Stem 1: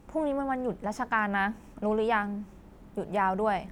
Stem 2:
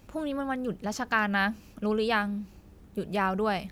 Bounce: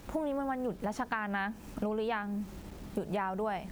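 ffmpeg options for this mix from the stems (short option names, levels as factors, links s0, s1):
-filter_complex "[0:a]volume=1.41,asplit=2[s0][s1];[1:a]dynaudnorm=f=260:g=7:m=3.35,volume=0.501[s2];[s1]apad=whole_len=163906[s3];[s2][s3]sidechaincompress=threshold=0.0282:ratio=3:attack=7.4:release=1380[s4];[s0][s4]amix=inputs=2:normalize=0,acrusher=bits=8:mix=0:aa=0.000001,acompressor=threshold=0.0282:ratio=6"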